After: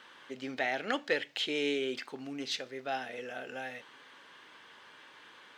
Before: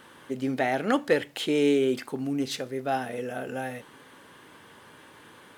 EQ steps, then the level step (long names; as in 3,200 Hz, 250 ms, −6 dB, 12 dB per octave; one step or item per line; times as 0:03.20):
spectral tilt +4.5 dB per octave
dynamic equaliser 1,100 Hz, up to −5 dB, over −43 dBFS, Q 1.8
high-frequency loss of the air 190 metres
−3.5 dB